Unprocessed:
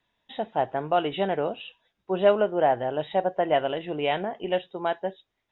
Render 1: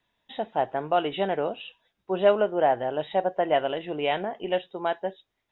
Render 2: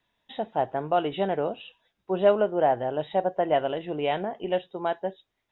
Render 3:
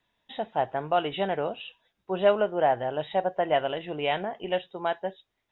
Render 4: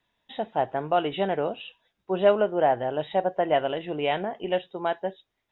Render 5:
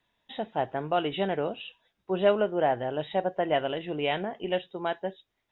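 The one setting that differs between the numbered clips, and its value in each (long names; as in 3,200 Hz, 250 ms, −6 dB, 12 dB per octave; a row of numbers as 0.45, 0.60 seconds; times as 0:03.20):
dynamic equaliser, frequency: 110, 2,400, 300, 8,300, 770 Hertz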